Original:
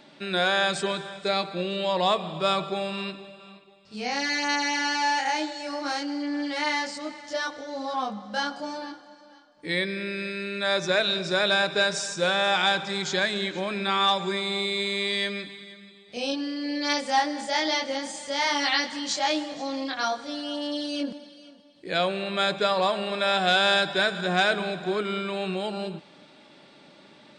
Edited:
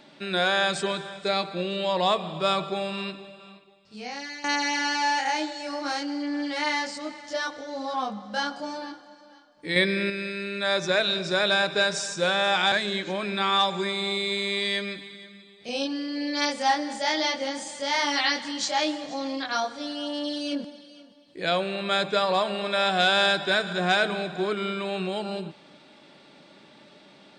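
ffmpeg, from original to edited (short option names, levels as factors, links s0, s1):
-filter_complex "[0:a]asplit=5[s0][s1][s2][s3][s4];[s0]atrim=end=4.44,asetpts=PTS-STARTPTS,afade=t=out:st=3.45:d=0.99:silence=0.188365[s5];[s1]atrim=start=4.44:end=9.762,asetpts=PTS-STARTPTS,afade=t=in:d=0.004:c=hsin:silence=0.188365[s6];[s2]atrim=start=9.758:end=10.102,asetpts=PTS-STARTPTS,volume=1.88[s7];[s3]atrim=start=10.098:end=12.722[s8];[s4]atrim=start=13.198[s9];[s5][s6]concat=n=2:v=0:a=1[s10];[s10][s7]acrossfade=d=0.004:c1=hsin:c2=hsin[s11];[s11][s8]acrossfade=d=0.004:c1=hsin:c2=hsin[s12];[s12][s9]acrossfade=d=0.004:c1=hsin:c2=hsin"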